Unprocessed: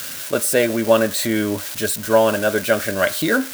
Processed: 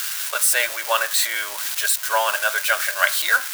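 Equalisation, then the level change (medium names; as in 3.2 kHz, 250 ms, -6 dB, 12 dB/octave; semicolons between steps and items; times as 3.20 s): high-pass 890 Hz 24 dB/octave; +3.5 dB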